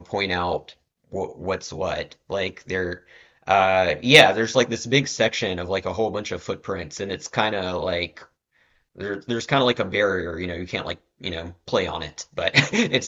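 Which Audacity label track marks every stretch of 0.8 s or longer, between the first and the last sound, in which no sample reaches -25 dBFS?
8.050000	9.010000	silence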